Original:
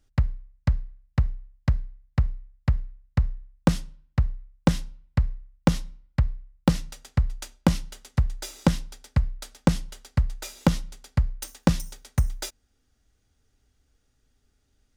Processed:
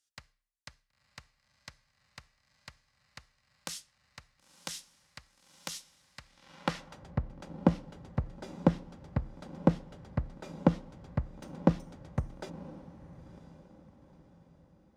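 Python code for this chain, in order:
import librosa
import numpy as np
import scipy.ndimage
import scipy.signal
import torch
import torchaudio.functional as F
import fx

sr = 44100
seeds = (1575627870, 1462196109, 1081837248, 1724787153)

y = fx.echo_diffused(x, sr, ms=981, feedback_pct=42, wet_db=-16.0)
y = fx.filter_sweep_bandpass(y, sr, from_hz=7900.0, to_hz=430.0, start_s=6.17, end_s=7.12, q=0.73)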